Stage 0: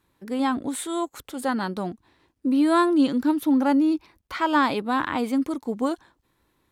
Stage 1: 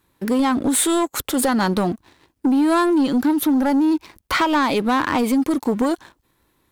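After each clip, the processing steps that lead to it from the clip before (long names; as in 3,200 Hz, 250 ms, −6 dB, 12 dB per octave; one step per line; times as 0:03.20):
downward compressor, threshold −28 dBFS, peak gain reduction 12 dB
high-shelf EQ 9,200 Hz +6.5 dB
leveller curve on the samples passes 2
level +7.5 dB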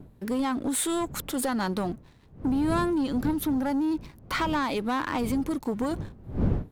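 wind on the microphone 180 Hz −27 dBFS
level −9 dB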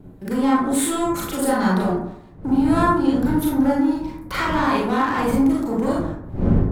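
convolution reverb RT60 0.75 s, pre-delay 28 ms, DRR −6.5 dB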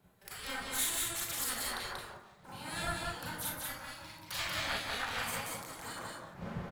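guitar amp tone stack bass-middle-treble 10-0-10
gate on every frequency bin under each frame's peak −10 dB weak
single-tap delay 186 ms −3 dB
level −1.5 dB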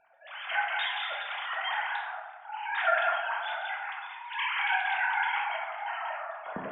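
three sine waves on the formant tracks
dense smooth reverb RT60 1.1 s, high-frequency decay 0.5×, DRR −1 dB
level +3.5 dB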